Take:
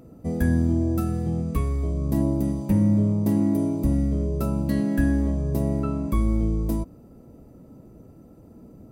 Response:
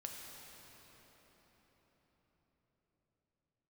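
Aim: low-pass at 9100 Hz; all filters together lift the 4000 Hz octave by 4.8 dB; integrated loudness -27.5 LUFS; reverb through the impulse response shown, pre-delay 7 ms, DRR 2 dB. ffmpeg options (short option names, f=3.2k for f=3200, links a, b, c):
-filter_complex "[0:a]lowpass=9.1k,equalizer=f=4k:t=o:g=6,asplit=2[a][b];[1:a]atrim=start_sample=2205,adelay=7[c];[b][c]afir=irnorm=-1:irlink=0,volume=0.5dB[d];[a][d]amix=inputs=2:normalize=0,volume=-4.5dB"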